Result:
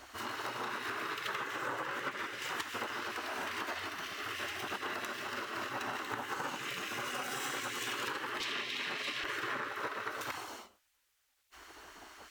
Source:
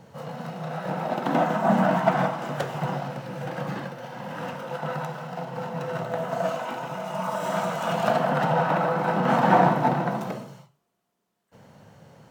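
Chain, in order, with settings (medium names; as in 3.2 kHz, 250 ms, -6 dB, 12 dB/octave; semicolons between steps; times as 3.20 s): 8.40–9.24 s: frequency weighting D; spectral gate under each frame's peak -15 dB weak; dynamic bell 150 Hz, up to -6 dB, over -55 dBFS, Q 1; compression 12:1, threshold -42 dBFS, peak gain reduction 16.5 dB; trim +7.5 dB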